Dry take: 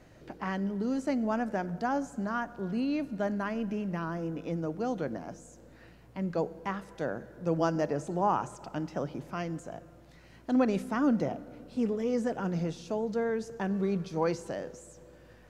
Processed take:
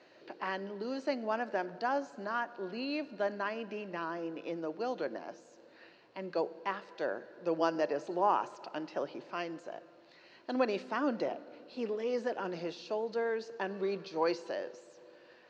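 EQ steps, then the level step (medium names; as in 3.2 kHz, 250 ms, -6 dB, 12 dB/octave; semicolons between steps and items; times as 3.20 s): cabinet simulation 360–5700 Hz, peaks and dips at 360 Hz +6 dB, 570 Hz +4 dB, 980 Hz +4 dB, 1.7 kHz +4 dB, 2.7 kHz +7 dB, 4.3 kHz +10 dB; -3.5 dB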